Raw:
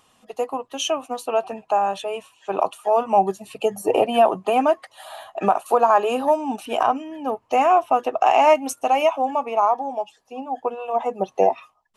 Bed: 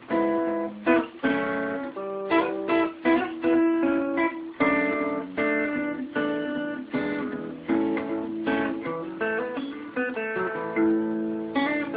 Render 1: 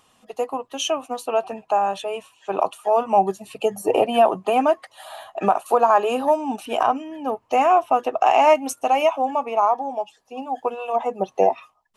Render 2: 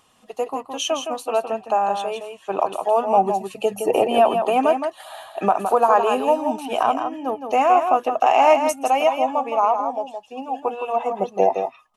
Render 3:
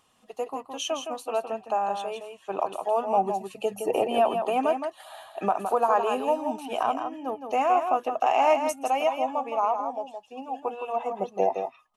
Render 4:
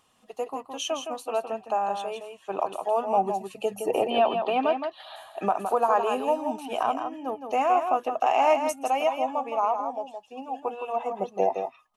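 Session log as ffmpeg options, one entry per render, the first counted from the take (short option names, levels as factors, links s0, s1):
-filter_complex "[0:a]asettb=1/sr,asplit=3[s0][s1][s2];[s0]atrim=end=10.374[s3];[s1]atrim=start=10.37:end=10.96,asetpts=PTS-STARTPTS,afade=t=in:d=0.004:c=qsin,afade=t=out:st=0.586:d=0.004:c=qsin,highshelf=f=2500:g=8.5[s4];[s2]atrim=start=10.956[s5];[s3][s4]acrossfade=d=0.004:c1=hsin:c2=qsin[s6];[s6][s5]acrossfade=d=0.004:c1=qsin:c2=hsin"
-af "aecho=1:1:165:0.447"
-af "volume=0.473"
-filter_complex "[0:a]asettb=1/sr,asplit=3[s0][s1][s2];[s0]atrim=end=4.104[s3];[s1]atrim=start=4.1:end=5.16,asetpts=PTS-STARTPTS,afade=t=in:d=0.004:c=qsin,afade=t=out:st=1.056:d=0.004:c=qsin,highshelf=f=5500:t=q:w=3:g=-12[s4];[s2]atrim=start=5.156[s5];[s3][s4]acrossfade=d=0.004:c1=hsin:c2=qsin[s6];[s6][s5]acrossfade=d=0.004:c1=qsin:c2=hsin"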